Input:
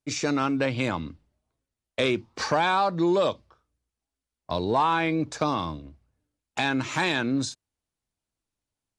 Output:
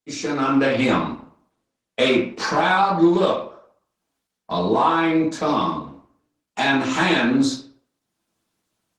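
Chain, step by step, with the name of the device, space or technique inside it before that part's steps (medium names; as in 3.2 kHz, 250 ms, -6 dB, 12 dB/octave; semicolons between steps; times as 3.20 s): far-field microphone of a smart speaker (reverberation RT60 0.55 s, pre-delay 3 ms, DRR -6.5 dB; high-pass 150 Hz 12 dB/octave; level rider gain up to 14 dB; trim -5 dB; Opus 16 kbps 48 kHz)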